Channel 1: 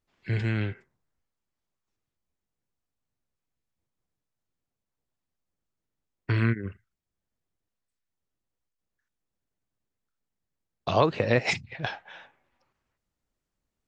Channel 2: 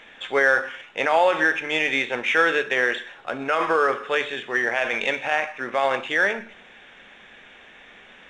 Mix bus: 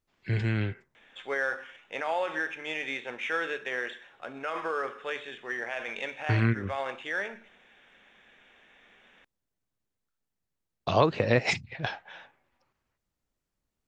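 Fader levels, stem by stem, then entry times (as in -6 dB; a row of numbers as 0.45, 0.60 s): -0.5, -11.5 dB; 0.00, 0.95 s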